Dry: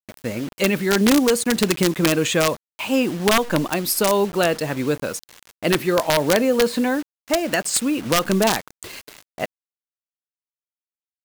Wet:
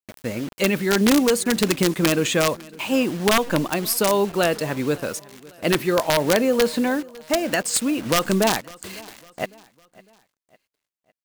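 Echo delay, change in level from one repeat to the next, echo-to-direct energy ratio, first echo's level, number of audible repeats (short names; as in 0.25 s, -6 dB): 0.554 s, -7.5 dB, -21.5 dB, -22.5 dB, 2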